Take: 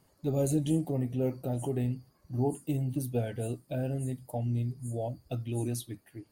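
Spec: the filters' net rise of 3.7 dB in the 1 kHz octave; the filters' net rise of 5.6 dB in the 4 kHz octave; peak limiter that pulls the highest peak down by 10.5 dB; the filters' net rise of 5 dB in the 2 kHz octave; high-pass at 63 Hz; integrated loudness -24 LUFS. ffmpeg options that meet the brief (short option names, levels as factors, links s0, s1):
-af "highpass=63,equalizer=f=1000:t=o:g=5,equalizer=f=2000:t=o:g=3.5,equalizer=f=4000:t=o:g=5.5,volume=4.47,alimiter=limit=0.188:level=0:latency=1"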